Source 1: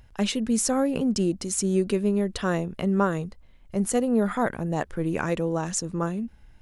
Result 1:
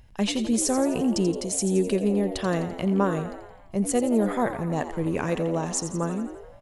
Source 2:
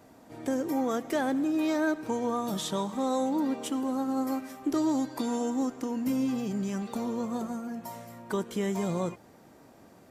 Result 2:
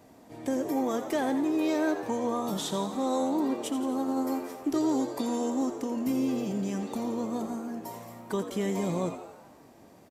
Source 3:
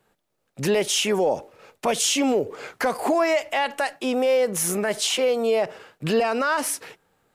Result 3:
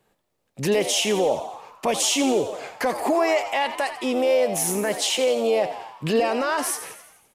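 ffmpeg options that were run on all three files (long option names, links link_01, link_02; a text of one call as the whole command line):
ffmpeg -i in.wav -filter_complex "[0:a]equalizer=frequency=1400:width_type=o:width=0.34:gain=-6,asplit=8[link_01][link_02][link_03][link_04][link_05][link_06][link_07][link_08];[link_02]adelay=85,afreqshift=86,volume=-11dB[link_09];[link_03]adelay=170,afreqshift=172,volume=-15.7dB[link_10];[link_04]adelay=255,afreqshift=258,volume=-20.5dB[link_11];[link_05]adelay=340,afreqshift=344,volume=-25.2dB[link_12];[link_06]adelay=425,afreqshift=430,volume=-29.9dB[link_13];[link_07]adelay=510,afreqshift=516,volume=-34.7dB[link_14];[link_08]adelay=595,afreqshift=602,volume=-39.4dB[link_15];[link_01][link_09][link_10][link_11][link_12][link_13][link_14][link_15]amix=inputs=8:normalize=0" out.wav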